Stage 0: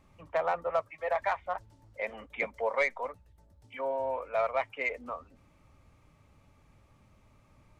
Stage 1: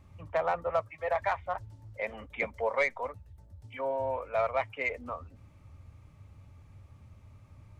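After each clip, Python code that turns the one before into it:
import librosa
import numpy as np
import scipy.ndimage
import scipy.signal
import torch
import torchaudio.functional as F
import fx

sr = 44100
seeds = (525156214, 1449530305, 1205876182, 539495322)

y = fx.peak_eq(x, sr, hz=91.0, db=14.5, octaves=1.1)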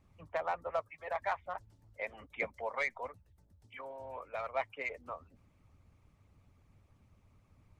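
y = fx.hpss(x, sr, part='harmonic', gain_db=-12)
y = F.gain(torch.from_numpy(y), -3.5).numpy()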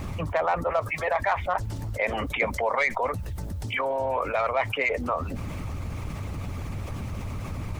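y = fx.env_flatten(x, sr, amount_pct=70)
y = F.gain(torch.from_numpy(y), 8.0).numpy()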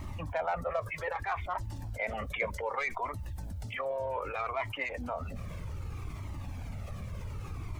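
y = fx.comb_cascade(x, sr, direction='falling', hz=0.64)
y = F.gain(torch.from_numpy(y), -4.0).numpy()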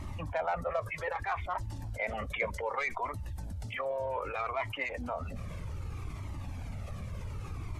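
y = fx.brickwall_lowpass(x, sr, high_hz=13000.0)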